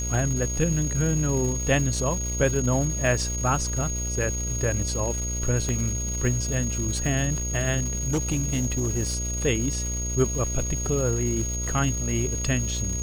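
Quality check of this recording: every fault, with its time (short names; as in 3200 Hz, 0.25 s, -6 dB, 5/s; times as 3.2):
buzz 60 Hz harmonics 11 -30 dBFS
crackle 580/s -32 dBFS
tone 6600 Hz -30 dBFS
5.69 pop -15 dBFS
8.03–9.16 clipped -20 dBFS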